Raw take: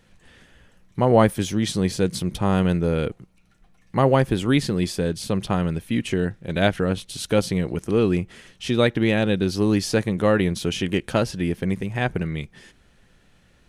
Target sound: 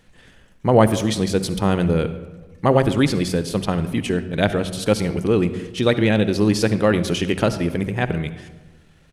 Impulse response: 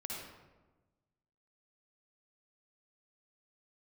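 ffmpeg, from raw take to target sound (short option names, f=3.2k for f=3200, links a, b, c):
-filter_complex "[0:a]atempo=1.5,bandreject=f=46.14:t=h:w=4,bandreject=f=92.28:t=h:w=4,bandreject=f=138.42:t=h:w=4,bandreject=f=184.56:t=h:w=4,bandreject=f=230.7:t=h:w=4,asplit=2[a][b];[1:a]atrim=start_sample=2205[c];[b][c]afir=irnorm=-1:irlink=0,volume=-8.5dB[d];[a][d]amix=inputs=2:normalize=0,volume=1dB"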